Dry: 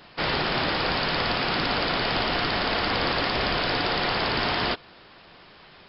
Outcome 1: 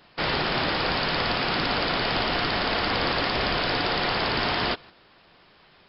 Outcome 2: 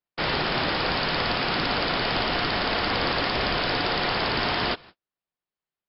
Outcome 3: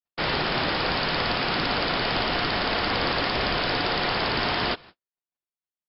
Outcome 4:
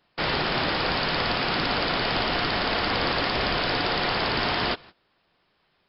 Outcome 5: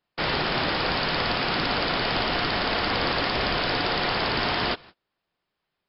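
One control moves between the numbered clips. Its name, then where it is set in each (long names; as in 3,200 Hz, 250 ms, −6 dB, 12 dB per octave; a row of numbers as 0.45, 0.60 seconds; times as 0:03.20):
noise gate, range: −6, −46, −59, −19, −32 decibels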